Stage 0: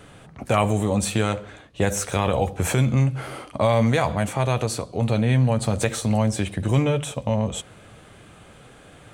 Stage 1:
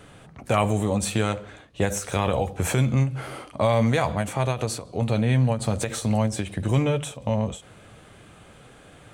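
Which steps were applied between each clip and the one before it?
ending taper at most 160 dB/s; gain -1.5 dB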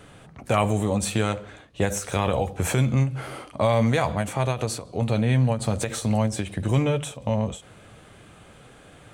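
nothing audible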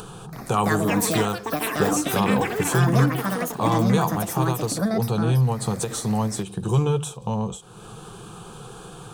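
upward compressor, threshold -30 dBFS; fixed phaser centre 400 Hz, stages 8; echoes that change speed 0.329 s, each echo +7 st, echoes 3; gain +3.5 dB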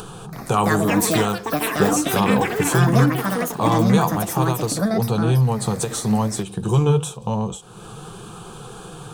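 flange 0.94 Hz, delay 2.5 ms, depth 4.6 ms, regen +84%; gain +7.5 dB

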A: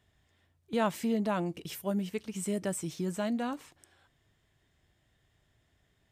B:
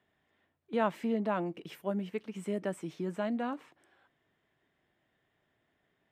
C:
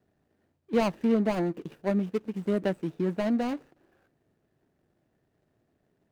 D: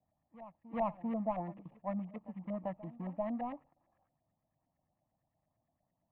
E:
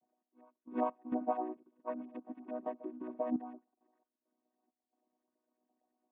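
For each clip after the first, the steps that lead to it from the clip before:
three-band isolator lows -19 dB, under 170 Hz, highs -16 dB, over 3000 Hz
median filter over 41 samples; gain +8 dB
LFO low-pass saw up 8.8 Hz 590–1800 Hz; fixed phaser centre 1500 Hz, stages 6; reverse echo 0.393 s -17.5 dB; gain -8.5 dB
chord vocoder major triad, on B3; step gate "x..x.xx.xxxxxx" 67 bpm -12 dB; gain +2 dB

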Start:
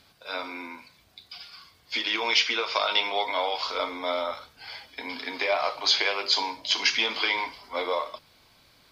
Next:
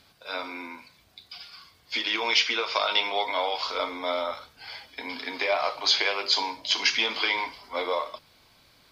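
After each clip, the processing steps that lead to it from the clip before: nothing audible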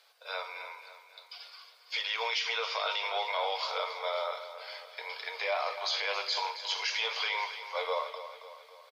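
elliptic high-pass 460 Hz, stop band 40 dB; limiter -18 dBFS, peak gain reduction 8.5 dB; on a send: feedback echo 0.273 s, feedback 52%, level -11.5 dB; on the sum: gain -3.5 dB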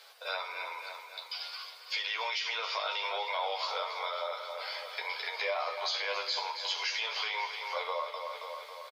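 compressor 2.5:1, threshold -45 dBFS, peak gain reduction 12 dB; doubler 12 ms -4 dB; gain +7.5 dB

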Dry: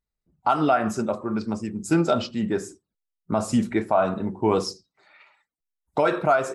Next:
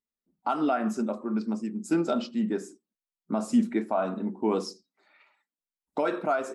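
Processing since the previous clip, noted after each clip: resonant low shelf 160 Hz -12 dB, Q 3; gain -7.5 dB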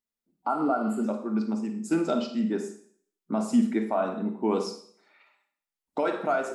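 notches 60/120/180 Hz; Schroeder reverb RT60 0.56 s, DRR 6.5 dB; spectral repair 0.49–1.02, 1500–6900 Hz before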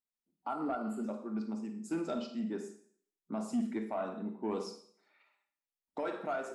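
soft clip -16 dBFS, distortion -21 dB; gain -9 dB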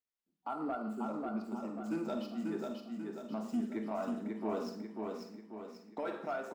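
median filter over 5 samples; feedback echo 0.54 s, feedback 48%, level -3.5 dB; gain -2 dB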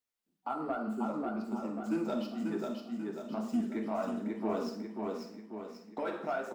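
flange 2 Hz, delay 7.6 ms, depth 6.7 ms, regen -45%; gain +7 dB

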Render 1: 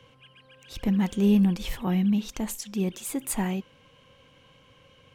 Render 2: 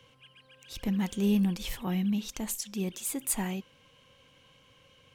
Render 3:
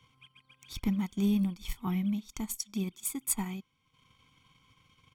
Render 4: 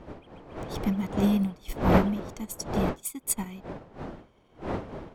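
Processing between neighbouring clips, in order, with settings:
high shelf 2800 Hz +7.5 dB; gain -5.5 dB
comb 0.9 ms, depth 85%; transient shaper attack +6 dB, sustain -10 dB; gain -6.5 dB
wind noise 550 Hz -35 dBFS; upward expander 1.5:1, over -45 dBFS; gain +5.5 dB

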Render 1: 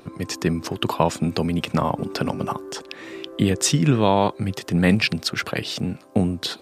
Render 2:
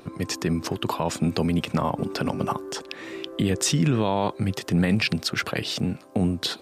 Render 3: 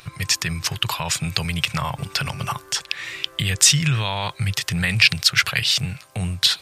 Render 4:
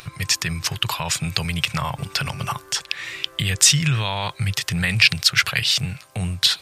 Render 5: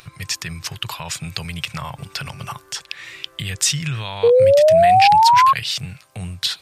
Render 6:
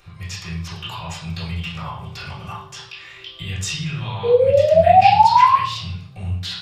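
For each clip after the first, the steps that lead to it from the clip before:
limiter -12.5 dBFS, peak gain reduction 9 dB
EQ curve 140 Hz 0 dB, 250 Hz -23 dB, 2200 Hz +6 dB; gain +5 dB
upward compressor, threshold -39 dBFS
painted sound rise, 4.23–5.53, 460–1100 Hz -7 dBFS; gain -4.5 dB
reverb RT60 0.60 s, pre-delay 3 ms, DRR -11.5 dB; gain -18 dB

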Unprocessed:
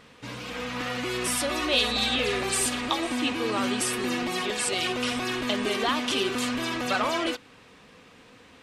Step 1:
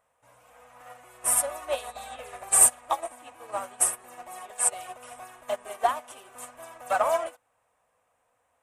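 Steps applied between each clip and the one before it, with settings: EQ curve 100 Hz 0 dB, 210 Hz -12 dB, 400 Hz -6 dB, 640 Hz +14 dB, 4500 Hz -10 dB, 8700 Hz +14 dB; upward expander 2.5:1, over -28 dBFS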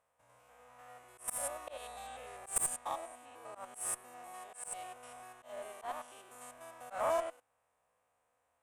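stepped spectrum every 0.1 s; added harmonics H 4 -20 dB, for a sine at -6.5 dBFS; auto swell 0.153 s; gain -5.5 dB

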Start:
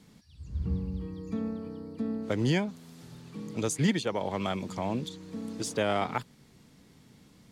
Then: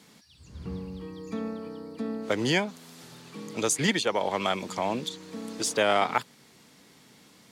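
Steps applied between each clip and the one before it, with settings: HPF 570 Hz 6 dB/oct; gain +7.5 dB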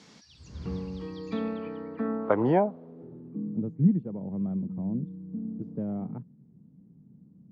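high shelf 3400 Hz -8 dB; low-pass sweep 5900 Hz -> 180 Hz, 1.03–3.66; gain +2 dB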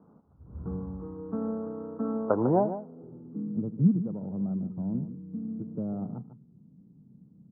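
median filter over 25 samples; Chebyshev low-pass 1400 Hz, order 5; echo 0.149 s -11.5 dB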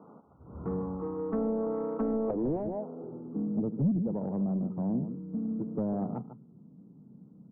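loudest bins only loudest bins 64; overdrive pedal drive 26 dB, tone 1300 Hz, clips at -11.5 dBFS; treble ducked by the level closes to 350 Hz, closed at -17.5 dBFS; gain -6.5 dB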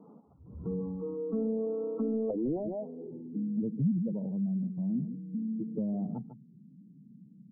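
spectral contrast raised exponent 1.8; gain -1 dB

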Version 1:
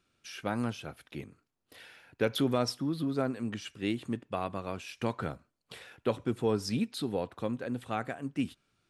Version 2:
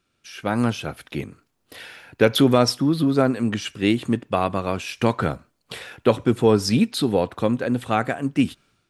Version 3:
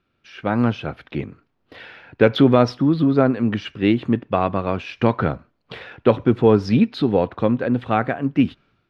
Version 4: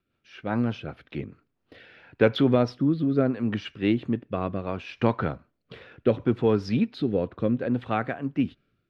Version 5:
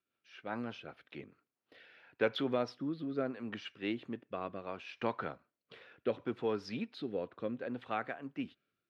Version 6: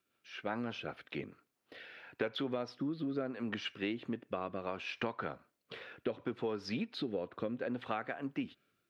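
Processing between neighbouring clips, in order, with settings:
AGC gain up to 10 dB; gain +2.5 dB
air absorption 280 m; gain +3 dB
rotary speaker horn 5 Hz, later 0.7 Hz, at 1.17; gain -5 dB
HPF 540 Hz 6 dB/oct; gain -7.5 dB
compressor 6:1, threshold -41 dBFS, peak gain reduction 14.5 dB; gain +7.5 dB

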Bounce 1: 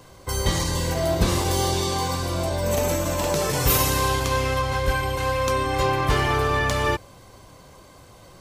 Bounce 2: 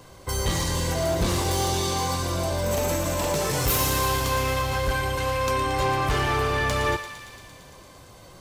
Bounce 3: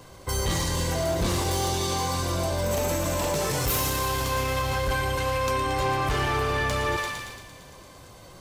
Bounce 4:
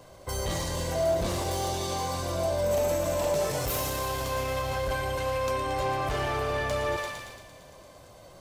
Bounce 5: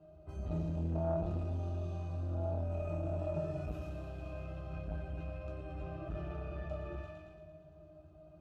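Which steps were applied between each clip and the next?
soft clip -17.5 dBFS, distortion -15 dB; thinning echo 0.114 s, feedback 79%, high-pass 1200 Hz, level -9.5 dB
limiter -19 dBFS, peak gain reduction 4.5 dB; sustainer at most 38 dB/s
bell 620 Hz +9.5 dB 0.49 oct; gain -5.5 dB
octave resonator D#, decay 0.11 s; shoebox room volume 130 m³, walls furnished, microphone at 1.2 m; core saturation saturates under 240 Hz; gain -1.5 dB

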